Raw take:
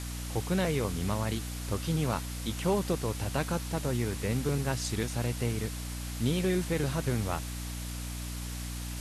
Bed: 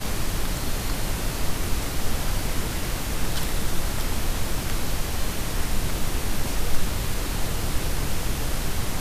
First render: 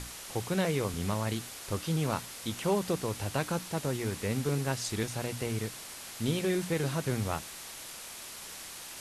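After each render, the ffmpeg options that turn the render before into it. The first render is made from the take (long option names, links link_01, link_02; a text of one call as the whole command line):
ffmpeg -i in.wav -af "bandreject=frequency=60:width_type=h:width=6,bandreject=frequency=120:width_type=h:width=6,bandreject=frequency=180:width_type=h:width=6,bandreject=frequency=240:width_type=h:width=6,bandreject=frequency=300:width_type=h:width=6" out.wav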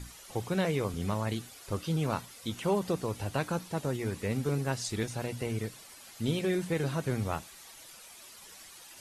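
ffmpeg -i in.wav -af "afftdn=noise_reduction=11:noise_floor=-45" out.wav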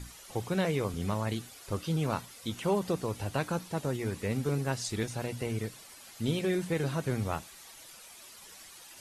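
ffmpeg -i in.wav -af anull out.wav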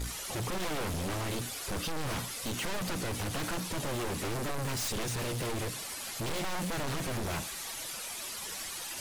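ffmpeg -i in.wav -af "aeval=exprs='(tanh(50.1*val(0)+0.4)-tanh(0.4))/50.1':channel_layout=same,aeval=exprs='0.0282*sin(PI/2*2.82*val(0)/0.0282)':channel_layout=same" out.wav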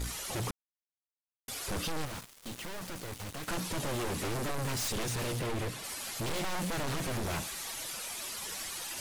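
ffmpeg -i in.wav -filter_complex "[0:a]asettb=1/sr,asplit=3[link_01][link_02][link_03];[link_01]atrim=end=2.054[link_04];[link_02]atrim=start=2.05:end=3.48,asetpts=PTS-STARTPTS,afade=type=in:duration=0.004:curve=qsin,afade=type=out:start_time=1.426:duration=0.004:curve=qsin,acrusher=bits=4:mix=0:aa=0.5[link_05];[link_03]atrim=start=3.476[link_06];[link_04][link_05]acrossfade=duration=0.004:curve1=hsin:curve2=qsin[link_07];[link_07][link_06]acrossfade=duration=0.004:curve1=qsin:curve2=hsin,asettb=1/sr,asplit=3[link_08][link_09][link_10];[link_08]atrim=end=5.394[link_11];[link_09]atrim=start=5.39:end=5.84,asetpts=PTS-STARTPTS,afade=type=in:duration=0.004:curve=qsin,afade=type=out:start_time=0.446:duration=0.004:curve=qsin,bass=frequency=250:gain=1,treble=frequency=4000:gain=-6[link_12];[link_10]atrim=start=5.836[link_13];[link_11][link_12]acrossfade=duration=0.004:curve1=hsin:curve2=qsin[link_14];[link_14][link_13]acrossfade=duration=0.004:curve1=qsin:curve2=hsin,asplit=3[link_15][link_16][link_17];[link_15]atrim=end=0.51,asetpts=PTS-STARTPTS,afade=type=out:start_time=0.506:duration=0.004:curve=hsin[link_18];[link_16]atrim=start=0.51:end=1.48,asetpts=PTS-STARTPTS,volume=0[link_19];[link_17]atrim=start=1.48,asetpts=PTS-STARTPTS,afade=type=in:duration=0.004:curve=hsin[link_20];[link_18][link_19][link_20]concat=n=3:v=0:a=1" out.wav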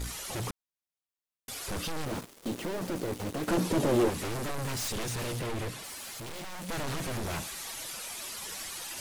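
ffmpeg -i in.wav -filter_complex "[0:a]asettb=1/sr,asplit=3[link_01][link_02][link_03];[link_01]atrim=end=2.064[link_04];[link_02]atrim=start=2.06:end=4.1,asetpts=PTS-STARTPTS,afade=type=in:duration=0.004:curve=qsin,afade=type=out:start_time=2.036:duration=0.004:curve=qsin,equalizer=frequency=340:width=0.57:gain=13.5[link_05];[link_03]atrim=start=4.096[link_06];[link_04][link_05]acrossfade=duration=0.004:curve1=hsin:curve2=qsin[link_07];[link_07][link_06]acrossfade=duration=0.004:curve1=qsin:curve2=hsin,asettb=1/sr,asplit=3[link_08][link_09][link_10];[link_08]atrim=end=5.834[link_11];[link_09]atrim=start=5.83:end=6.69,asetpts=PTS-STARTPTS,afade=type=in:duration=0.004:curve=qsin,afade=type=out:start_time=0.856:duration=0.004:curve=qsin,asoftclip=type=hard:threshold=-39.5dB[link_12];[link_10]atrim=start=6.686[link_13];[link_11][link_12]acrossfade=duration=0.004:curve1=hsin:curve2=qsin[link_14];[link_14][link_13]acrossfade=duration=0.004:curve1=qsin:curve2=hsin" out.wav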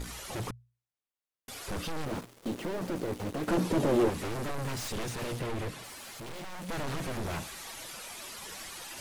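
ffmpeg -i in.wav -af "highshelf=frequency=3600:gain=-6,bandreject=frequency=60:width_type=h:width=6,bandreject=frequency=120:width_type=h:width=6" out.wav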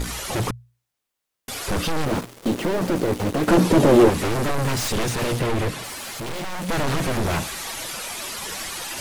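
ffmpeg -i in.wav -af "volume=12dB" out.wav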